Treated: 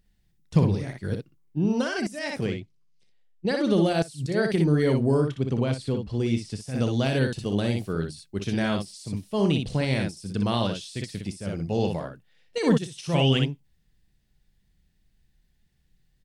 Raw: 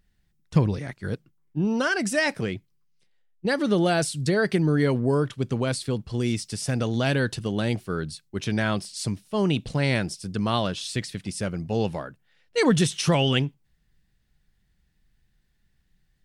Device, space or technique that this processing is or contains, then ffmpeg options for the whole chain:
de-esser from a sidechain: -filter_complex "[0:a]equalizer=f=1400:w=1.2:g=-5.5,asettb=1/sr,asplit=3[s0][s1][s2];[s0]atrim=end=2.464[s3];[s1]atrim=start=2.46:end=3.7,asetpts=PTS-STARTPTS,afade=t=in:d=0.004:c=qsin,afade=t=out:st=1.236:d=0.004:c=qsin,lowpass=7700[s4];[s2]atrim=start=3.696[s5];[s3][s4]acrossfade=d=0.004:c1=hsin:c2=qsin[s6];[s6][s5]acrossfade=d=0.004:c1=qsin:c2=hsin,asettb=1/sr,asplit=3[s7][s8][s9];[s7]atrim=end=5.214[s10];[s8]atrim=start=5.21:end=6.61,asetpts=PTS-STARTPTS,afade=t=in:d=0.004:c=qsin,afade=t=out:st=1.396:d=0.004:c=qsin,aemphasis=mode=reproduction:type=50kf[s11];[s9]atrim=start=6.606[s12];[s10][s11]acrossfade=d=0.004:c1=hsin:c2=qsin[s13];[s13][s12]acrossfade=d=0.004:c1=qsin:c2=hsin,aecho=1:1:30|60:0.158|0.531,asplit=2[s14][s15];[s15]highpass=f=6400:w=0.5412,highpass=f=6400:w=1.3066,apad=whole_len=719073[s16];[s14][s16]sidechaincompress=threshold=0.00708:ratio=12:attack=1.3:release=71"

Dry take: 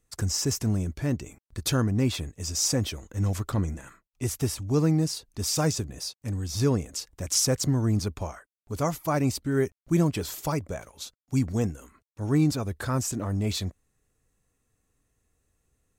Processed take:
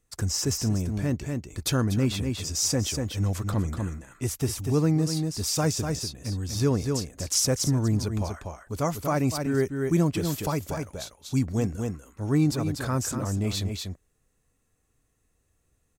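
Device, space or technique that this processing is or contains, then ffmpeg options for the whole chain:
ducked delay: -filter_complex "[0:a]asplit=3[s0][s1][s2];[s1]adelay=242,volume=0.631[s3];[s2]apad=whole_len=715502[s4];[s3][s4]sidechaincompress=threshold=0.0251:ratio=8:attack=26:release=125[s5];[s0][s5]amix=inputs=2:normalize=0"

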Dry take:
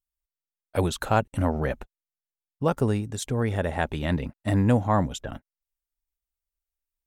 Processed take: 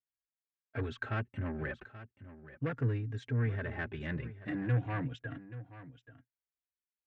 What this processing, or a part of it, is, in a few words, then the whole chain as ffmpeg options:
barber-pole flanger into a guitar amplifier: -filter_complex "[0:a]asplit=2[s0][s1];[s1]adelay=3.7,afreqshift=-0.41[s2];[s0][s2]amix=inputs=2:normalize=1,asoftclip=type=tanh:threshold=0.0668,highpass=110,equalizer=f=120:t=q:w=4:g=10,equalizer=f=200:t=q:w=4:g=-9,equalizer=f=580:t=q:w=4:g=-5,equalizer=f=1100:t=q:w=4:g=6,equalizer=f=1600:t=q:w=4:g=8,lowpass=f=4100:w=0.5412,lowpass=f=4100:w=1.3066,equalizer=f=250:t=o:w=1:g=3,equalizer=f=1000:t=o:w=1:g=-12,equalizer=f=2000:t=o:w=1:g=5,equalizer=f=4000:t=o:w=1:g=-9,aecho=1:1:831:0.178,volume=0.596"

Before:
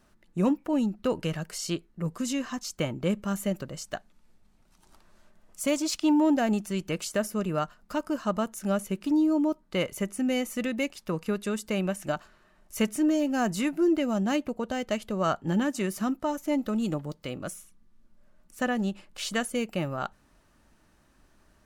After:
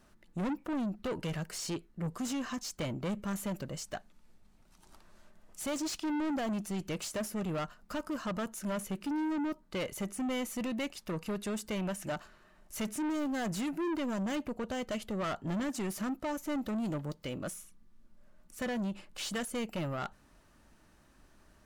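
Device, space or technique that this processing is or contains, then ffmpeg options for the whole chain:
saturation between pre-emphasis and de-emphasis: -af "highshelf=f=7500:g=10.5,asoftclip=type=tanh:threshold=0.0282,highshelf=f=7500:g=-10.5"

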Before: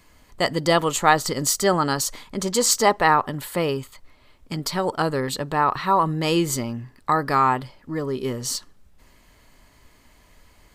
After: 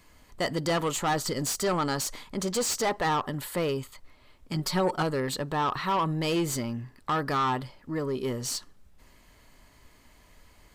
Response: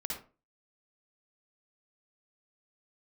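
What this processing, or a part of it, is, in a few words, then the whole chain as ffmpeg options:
saturation between pre-emphasis and de-emphasis: -filter_complex "[0:a]highshelf=f=8200:g=11,asoftclip=type=tanh:threshold=0.112,highshelf=f=8200:g=-11,asettb=1/sr,asplit=3[s0][s1][s2];[s0]atrim=end=4.544[s3];[s1]atrim=start=4.54:end=5.03,asetpts=PTS-STARTPTS,afade=t=in:d=0.004:c=qsin,afade=t=out:st=0.486:d=0.004:c=qsin,aecho=1:1:5.5:0.68,atrim=end_sample=21609[s4];[s2]atrim=start=5.026[s5];[s3][s4]acrossfade=d=0.004:c1=hsin:c2=qsin[s6];[s6][s5]acrossfade=d=0.004:c1=qsin:c2=hsin,volume=0.75"

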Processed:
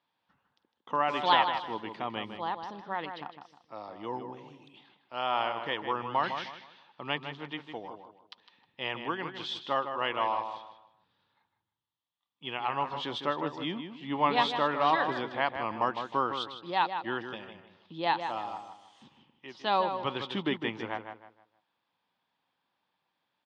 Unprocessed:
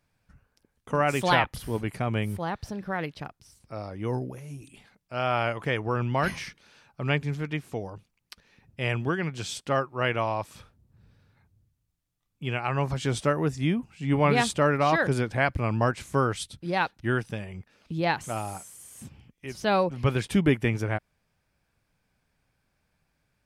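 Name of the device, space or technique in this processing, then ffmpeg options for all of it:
phone earpiece: -filter_complex "[0:a]asettb=1/sr,asplit=3[s0][s1][s2];[s0]atrim=end=10.344[s3];[s1]atrim=start=10.34:end=12.44,asetpts=PTS-STARTPTS,afade=t=in:d=0.004:c=qsin,afade=t=out:st=2.096:d=0.004:c=qsin,equalizer=f=240:t=o:w=2.7:g=-5[s4];[s2]atrim=start=12.436[s5];[s3][s4]acrossfade=d=0.004:c1=hsin:c2=qsin[s6];[s6][s5]acrossfade=d=0.004:c1=qsin:c2=hsin,highpass=410,equalizer=f=430:t=q:w=4:g=-7,equalizer=f=620:t=q:w=4:g=-7,equalizer=f=950:t=q:w=4:g=5,equalizer=f=1500:t=q:w=4:g=-8,equalizer=f=2300:t=q:w=4:g=-9,equalizer=f=3400:t=q:w=4:g=6,lowpass=f=3900:w=0.5412,lowpass=f=3900:w=1.3066,asplit=2[s7][s8];[s8]adelay=156,lowpass=f=3200:p=1,volume=0.422,asplit=2[s9][s10];[s10]adelay=156,lowpass=f=3200:p=1,volume=0.32,asplit=2[s11][s12];[s12]adelay=156,lowpass=f=3200:p=1,volume=0.32,asplit=2[s13][s14];[s14]adelay=156,lowpass=f=3200:p=1,volume=0.32[s15];[s7][s9][s11][s13][s15]amix=inputs=5:normalize=0"

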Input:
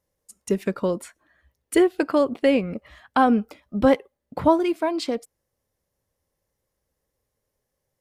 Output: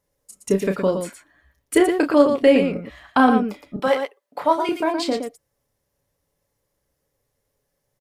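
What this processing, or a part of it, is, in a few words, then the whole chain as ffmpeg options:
slapback doubling: -filter_complex "[0:a]asettb=1/sr,asplit=3[s0][s1][s2];[s0]atrim=end=3.764[s3];[s1]atrim=start=3.76:end=4.69,asetpts=PTS-STARTPTS,afade=t=in:d=0.004:c=qsin,afade=t=out:st=0.926:d=0.004:c=qsin,highpass=630[s4];[s2]atrim=start=4.686[s5];[s3][s4]acrossfade=d=0.004:c1=hsin:c2=qsin[s6];[s6][s5]acrossfade=d=0.004:c1=qsin:c2=hsin,aecho=1:1:7:0.31,asplit=3[s7][s8][s9];[s8]adelay=31,volume=0.447[s10];[s9]adelay=117,volume=0.447[s11];[s7][s10][s11]amix=inputs=3:normalize=0,volume=1.33"

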